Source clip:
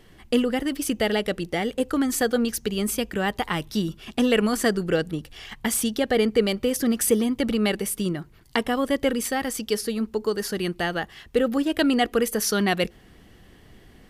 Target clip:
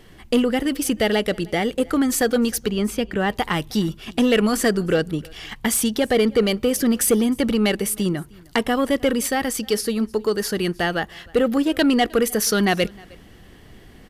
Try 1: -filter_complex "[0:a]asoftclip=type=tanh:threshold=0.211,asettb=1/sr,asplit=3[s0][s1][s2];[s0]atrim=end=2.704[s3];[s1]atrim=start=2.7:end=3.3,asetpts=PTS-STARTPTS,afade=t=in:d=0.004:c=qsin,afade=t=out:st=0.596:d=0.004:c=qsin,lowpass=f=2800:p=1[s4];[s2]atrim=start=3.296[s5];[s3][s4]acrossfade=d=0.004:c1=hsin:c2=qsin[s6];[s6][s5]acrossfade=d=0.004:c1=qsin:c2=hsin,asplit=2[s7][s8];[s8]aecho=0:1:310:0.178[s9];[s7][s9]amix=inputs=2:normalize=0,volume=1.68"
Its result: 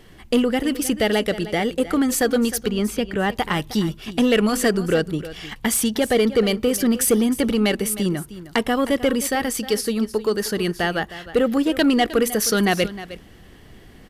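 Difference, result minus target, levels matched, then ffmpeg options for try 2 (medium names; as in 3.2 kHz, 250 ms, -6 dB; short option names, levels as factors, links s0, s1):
echo-to-direct +10.5 dB
-filter_complex "[0:a]asoftclip=type=tanh:threshold=0.211,asettb=1/sr,asplit=3[s0][s1][s2];[s0]atrim=end=2.704[s3];[s1]atrim=start=2.7:end=3.3,asetpts=PTS-STARTPTS,afade=t=in:d=0.004:c=qsin,afade=t=out:st=0.596:d=0.004:c=qsin,lowpass=f=2800:p=1[s4];[s2]atrim=start=3.296[s5];[s3][s4]acrossfade=d=0.004:c1=hsin:c2=qsin[s6];[s6][s5]acrossfade=d=0.004:c1=qsin:c2=hsin,asplit=2[s7][s8];[s8]aecho=0:1:310:0.0531[s9];[s7][s9]amix=inputs=2:normalize=0,volume=1.68"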